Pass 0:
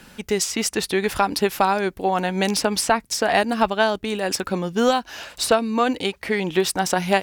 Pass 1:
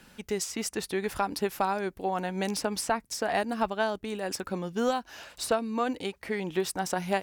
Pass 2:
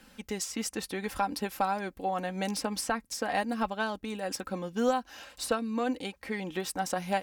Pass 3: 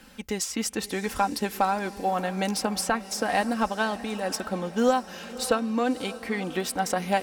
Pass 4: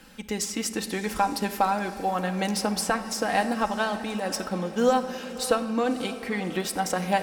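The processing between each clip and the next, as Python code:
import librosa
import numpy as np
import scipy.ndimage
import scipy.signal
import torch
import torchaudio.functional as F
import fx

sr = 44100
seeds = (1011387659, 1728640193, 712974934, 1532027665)

y1 = fx.dynamic_eq(x, sr, hz=3300.0, q=0.91, threshold_db=-37.0, ratio=4.0, max_db=-4)
y1 = F.gain(torch.from_numpy(y1), -8.5).numpy()
y2 = y1 + 0.5 * np.pad(y1, (int(3.8 * sr / 1000.0), 0))[:len(y1)]
y2 = F.gain(torch.from_numpy(y2), -2.5).numpy()
y3 = fx.echo_diffused(y2, sr, ms=592, feedback_pct=52, wet_db=-15.0)
y3 = F.gain(torch.from_numpy(y3), 5.0).numpy()
y4 = fx.room_shoebox(y3, sr, seeds[0], volume_m3=1800.0, walls='mixed', distance_m=0.64)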